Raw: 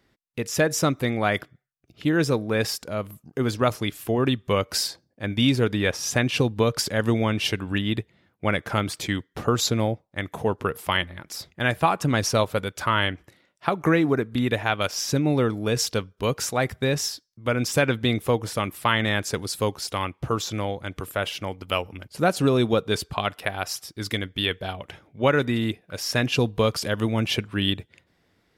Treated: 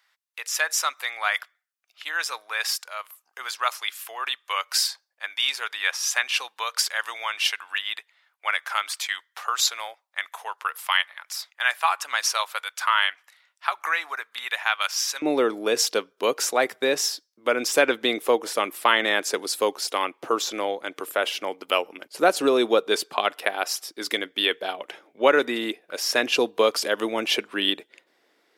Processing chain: high-pass 960 Hz 24 dB/octave, from 15.22 s 320 Hz; trim +3 dB

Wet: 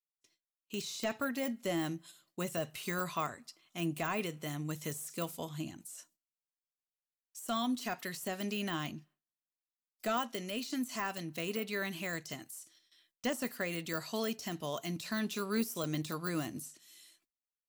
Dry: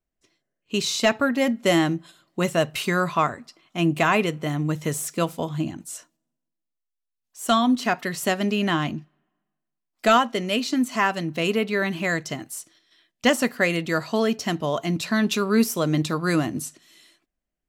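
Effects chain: de-esser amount 90%; pre-emphasis filter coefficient 0.8; gate with hold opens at -59 dBFS

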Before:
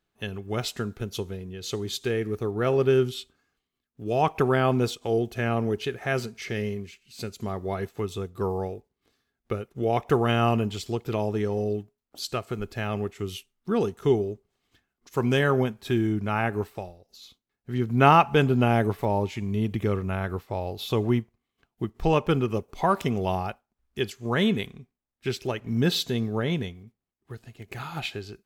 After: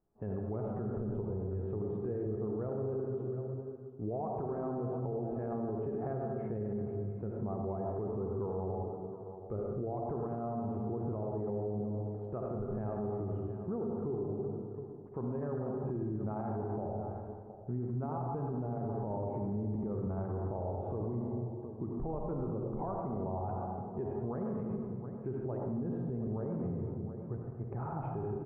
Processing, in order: compression, threshold -28 dBFS, peak gain reduction 15.5 dB; inverse Chebyshev low-pass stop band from 4.3 kHz, stop band 70 dB; multi-tap echo 47/718 ms -15.5/-16.5 dB; on a send at -1.5 dB: reverberation RT60 1.7 s, pre-delay 64 ms; on the sum: peak limiter -29 dBFS, peak gain reduction 12.5 dB

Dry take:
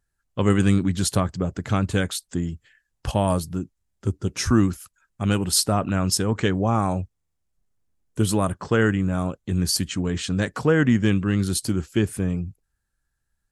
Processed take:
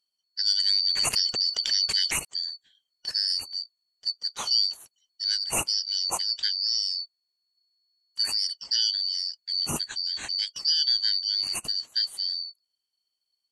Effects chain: four frequency bands reordered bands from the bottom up 4321; 0.70–2.25 s: level flattener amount 70%; trim -6 dB

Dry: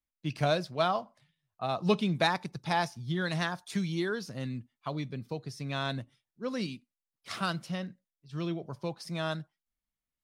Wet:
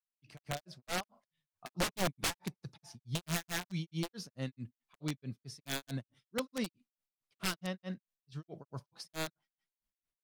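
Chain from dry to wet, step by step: fade-in on the opening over 1.26 s; integer overflow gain 25 dB; granulator 174 ms, grains 4.6 per s

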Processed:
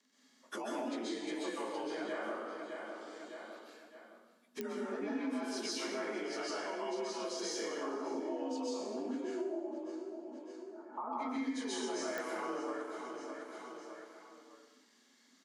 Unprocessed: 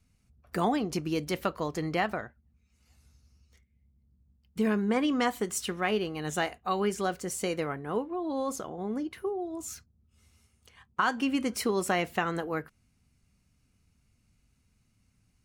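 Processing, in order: frequency axis rescaled in octaves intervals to 89%; 9.40–11.13 s: inverse Chebyshev low-pass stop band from 3 kHz, stop band 50 dB; feedback delay 608 ms, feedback 36%, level -17 dB; peak limiter -26 dBFS, peak gain reduction 10.5 dB; Chebyshev high-pass 240 Hz, order 5; plate-style reverb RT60 1 s, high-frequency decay 0.95×, pre-delay 115 ms, DRR -7 dB; compression 2.5:1, threshold -48 dBFS, peak gain reduction 18.5 dB; clicks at 4.61/12.18 s, -29 dBFS; trim +4.5 dB

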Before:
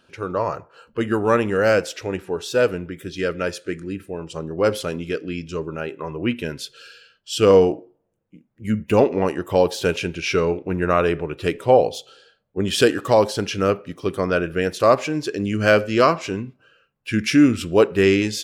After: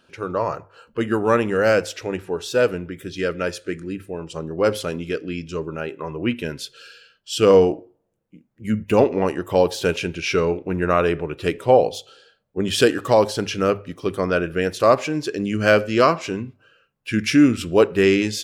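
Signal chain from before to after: hum notches 50/100 Hz

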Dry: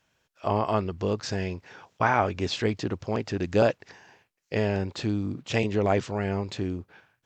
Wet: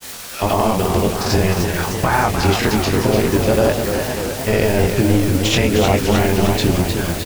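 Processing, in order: octave divider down 1 oct, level -5 dB; compression 3:1, threshold -42 dBFS, peak gain reduction 18.5 dB; added noise white -55 dBFS; granulator; doubling 23 ms -5 dB; loudness maximiser +28.5 dB; modulated delay 303 ms, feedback 70%, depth 142 cents, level -6.5 dB; trim -4 dB

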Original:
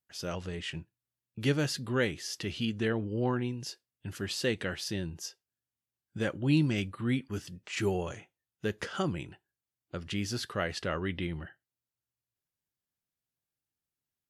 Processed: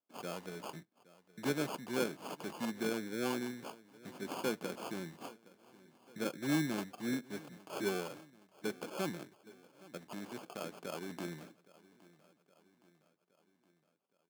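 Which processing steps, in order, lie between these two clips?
9.28–11.11 s: level held to a coarse grid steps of 9 dB; sample-and-hold 23×; high-pass 180 Hz 24 dB/octave; on a send: feedback delay 817 ms, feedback 55%, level -21 dB; on the sum: trim -5 dB

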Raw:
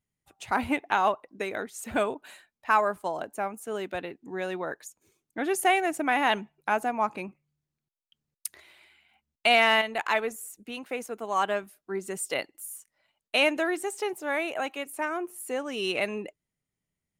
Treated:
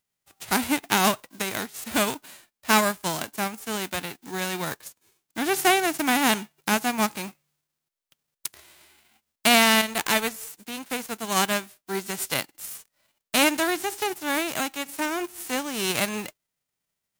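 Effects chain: formants flattened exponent 0.3; trim +3 dB

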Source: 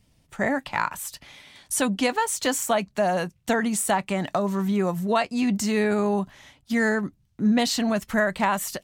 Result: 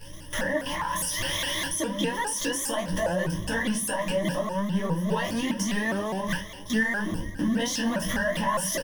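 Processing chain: jump at every zero crossing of -28.5 dBFS; gate with hold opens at -30 dBFS; rippled EQ curve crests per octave 1.2, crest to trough 17 dB; compression 3:1, threshold -34 dBFS, peak gain reduction 16 dB; peak limiter -28 dBFS, peak gain reduction 9.5 dB; on a send: delay 461 ms -20.5 dB; on the sum: simulated room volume 170 m³, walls furnished, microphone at 2.2 m; vibrato with a chosen wave saw up 4.9 Hz, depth 160 cents; trim +3.5 dB

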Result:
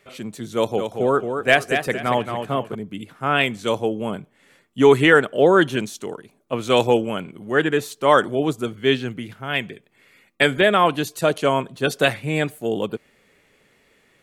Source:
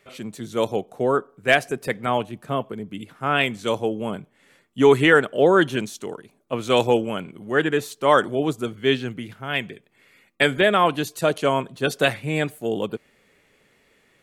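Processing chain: 0.55–2.75 s: modulated delay 226 ms, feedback 32%, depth 71 cents, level -7 dB; trim +1.5 dB

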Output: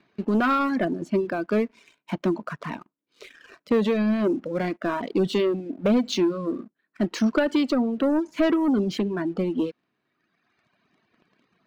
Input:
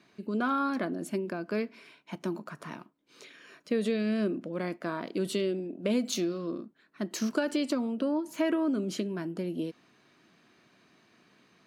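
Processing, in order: distance through air 180 m; waveshaping leveller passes 2; reverb removal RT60 1.5 s; trim +4 dB

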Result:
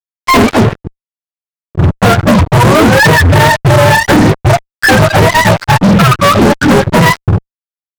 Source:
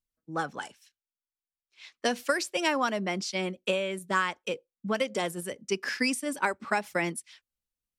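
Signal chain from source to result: spectrum inverted on a logarithmic axis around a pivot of 580 Hz; compression 8:1, threshold -33 dBFS, peak gain reduction 13 dB; fuzz box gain 51 dB, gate -54 dBFS; trim +9 dB

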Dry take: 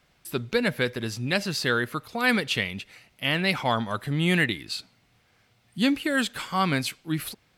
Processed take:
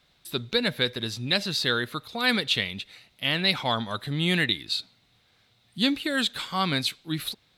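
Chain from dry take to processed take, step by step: peaking EQ 3.8 kHz +13 dB 0.37 oct; trim -2.5 dB

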